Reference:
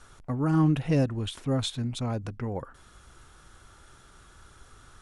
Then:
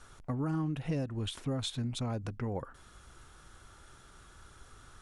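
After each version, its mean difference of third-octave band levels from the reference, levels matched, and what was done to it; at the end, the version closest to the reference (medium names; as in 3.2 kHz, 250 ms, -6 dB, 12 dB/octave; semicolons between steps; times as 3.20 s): 4.0 dB: compression 6:1, threshold -28 dBFS, peak gain reduction 10 dB; trim -2 dB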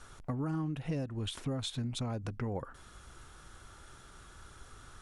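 6.0 dB: compression 8:1, threshold -32 dBFS, peak gain reduction 14 dB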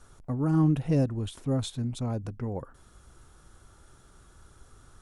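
2.5 dB: peaking EQ 2.4 kHz -8 dB 2.6 oct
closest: third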